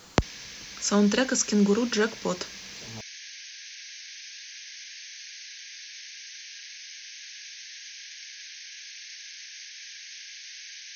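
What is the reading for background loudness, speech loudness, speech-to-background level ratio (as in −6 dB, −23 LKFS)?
−40.0 LKFS, −25.0 LKFS, 15.0 dB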